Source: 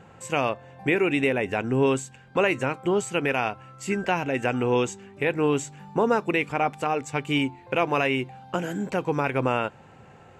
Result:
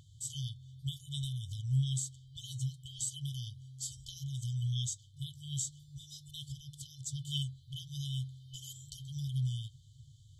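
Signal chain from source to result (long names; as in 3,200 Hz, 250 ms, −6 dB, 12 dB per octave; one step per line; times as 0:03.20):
brick-wall band-stop 140–3,000 Hz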